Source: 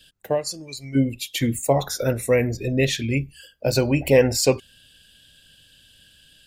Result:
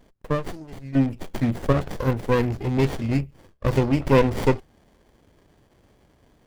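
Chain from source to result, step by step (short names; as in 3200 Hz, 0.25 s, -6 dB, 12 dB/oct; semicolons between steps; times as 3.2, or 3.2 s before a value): rattling part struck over -23 dBFS, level -26 dBFS; running maximum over 33 samples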